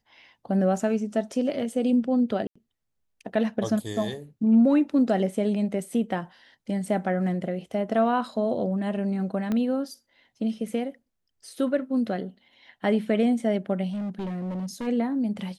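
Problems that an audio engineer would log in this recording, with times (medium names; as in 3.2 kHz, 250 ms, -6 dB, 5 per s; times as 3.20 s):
2.47–2.56 s: dropout 85 ms
9.52 s: pop -16 dBFS
13.91–14.88 s: clipped -28 dBFS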